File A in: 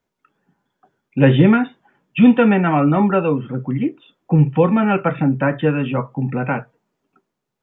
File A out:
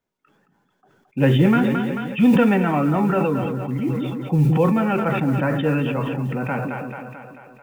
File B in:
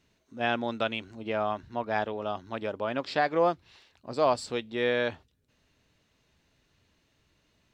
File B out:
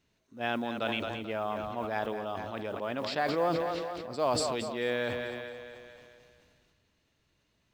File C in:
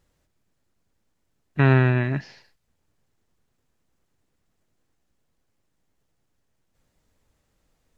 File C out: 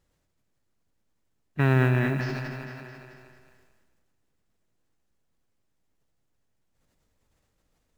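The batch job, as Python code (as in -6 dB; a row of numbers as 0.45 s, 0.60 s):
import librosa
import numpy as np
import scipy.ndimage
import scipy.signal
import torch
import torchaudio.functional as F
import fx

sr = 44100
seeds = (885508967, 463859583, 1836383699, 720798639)

y = fx.mod_noise(x, sr, seeds[0], snr_db=35)
y = fx.echo_split(y, sr, split_hz=420.0, low_ms=164, high_ms=220, feedback_pct=52, wet_db=-11.5)
y = fx.sustainer(y, sr, db_per_s=23.0)
y = y * librosa.db_to_amplitude(-5.0)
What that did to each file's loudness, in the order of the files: -3.0 LU, -3.0 LU, -4.5 LU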